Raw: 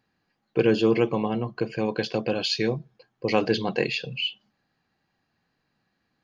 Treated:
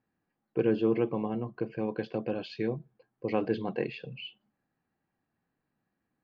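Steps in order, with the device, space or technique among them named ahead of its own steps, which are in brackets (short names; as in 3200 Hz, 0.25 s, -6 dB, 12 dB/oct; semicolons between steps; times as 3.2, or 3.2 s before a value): phone in a pocket (LPF 3100 Hz 12 dB/oct; bell 290 Hz +3 dB 0.89 oct; high shelf 2400 Hz -9 dB); gain -7 dB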